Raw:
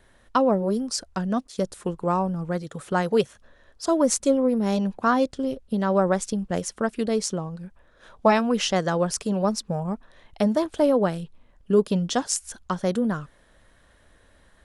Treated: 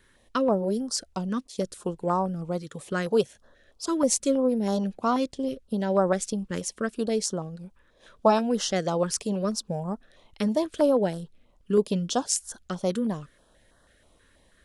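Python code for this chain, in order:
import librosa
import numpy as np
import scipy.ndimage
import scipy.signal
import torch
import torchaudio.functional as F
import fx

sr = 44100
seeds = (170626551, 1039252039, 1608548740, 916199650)

y = fx.low_shelf(x, sr, hz=210.0, db=-6.0)
y = fx.filter_held_notch(y, sr, hz=6.2, low_hz=700.0, high_hz=2400.0)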